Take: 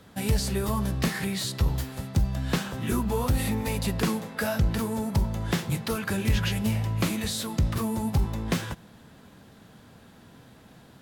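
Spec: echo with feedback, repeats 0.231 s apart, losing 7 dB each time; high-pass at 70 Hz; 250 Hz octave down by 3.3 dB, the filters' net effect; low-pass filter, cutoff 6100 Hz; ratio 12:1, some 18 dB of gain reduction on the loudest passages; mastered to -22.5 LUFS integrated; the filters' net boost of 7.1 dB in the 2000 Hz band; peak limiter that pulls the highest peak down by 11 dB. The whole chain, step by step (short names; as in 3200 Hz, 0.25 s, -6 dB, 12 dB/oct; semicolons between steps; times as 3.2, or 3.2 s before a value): HPF 70 Hz; LPF 6100 Hz; bell 250 Hz -4.5 dB; bell 2000 Hz +9 dB; compressor 12:1, threshold -39 dBFS; limiter -36 dBFS; feedback echo 0.231 s, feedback 45%, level -7 dB; gain +22.5 dB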